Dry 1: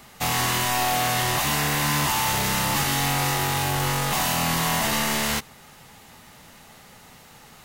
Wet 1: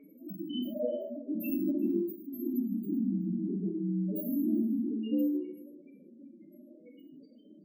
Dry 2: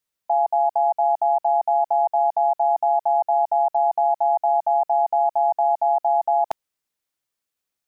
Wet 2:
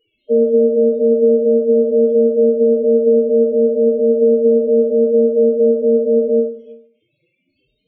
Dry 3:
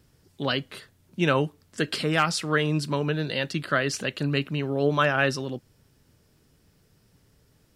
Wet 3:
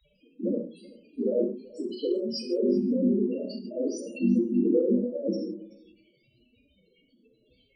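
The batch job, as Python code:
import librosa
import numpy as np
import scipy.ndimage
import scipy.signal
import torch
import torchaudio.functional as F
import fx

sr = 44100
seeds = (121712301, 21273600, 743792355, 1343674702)

y = fx.cycle_switch(x, sr, every=3, mode='inverted')
y = scipy.signal.sosfilt(scipy.signal.butter(4, 230.0, 'highpass', fs=sr, output='sos'), y)
y = fx.low_shelf(y, sr, hz=340.0, db=9.0)
y = fx.hpss(y, sr, part='harmonic', gain_db=7)
y = fx.high_shelf(y, sr, hz=6200.0, db=11.0)
y = fx.level_steps(y, sr, step_db=11)
y = fx.dmg_crackle(y, sr, seeds[0], per_s=370.0, level_db=-31.0)
y = fx.spec_topn(y, sr, count=4)
y = fx.brickwall_bandstop(y, sr, low_hz=630.0, high_hz=2100.0)
y = y + 10.0 ** (-21.5 / 20.0) * np.pad(y, (int(380 * sr / 1000.0), 0))[:len(y)]
y = fx.rev_gated(y, sr, seeds[1], gate_ms=190, shape='falling', drr_db=-1.0)
y = fx.end_taper(y, sr, db_per_s=120.0)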